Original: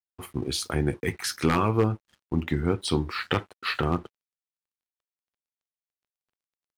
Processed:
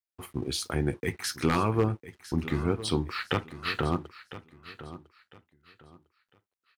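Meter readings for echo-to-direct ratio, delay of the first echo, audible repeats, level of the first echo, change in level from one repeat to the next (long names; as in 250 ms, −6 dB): −14.5 dB, 1,003 ms, 2, −15.0 dB, −11.5 dB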